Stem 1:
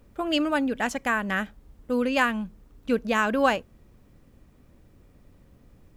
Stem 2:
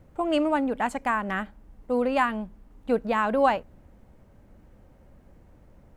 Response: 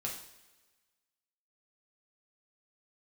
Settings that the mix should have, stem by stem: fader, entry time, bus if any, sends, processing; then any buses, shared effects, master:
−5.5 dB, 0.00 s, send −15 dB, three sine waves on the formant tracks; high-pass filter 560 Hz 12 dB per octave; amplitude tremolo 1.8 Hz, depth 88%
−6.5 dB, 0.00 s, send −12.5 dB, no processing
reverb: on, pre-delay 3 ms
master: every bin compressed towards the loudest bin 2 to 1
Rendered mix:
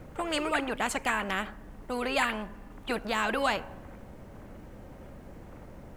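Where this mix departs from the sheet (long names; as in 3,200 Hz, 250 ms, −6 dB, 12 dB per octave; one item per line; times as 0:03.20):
stem 2: polarity flipped
reverb return −10.0 dB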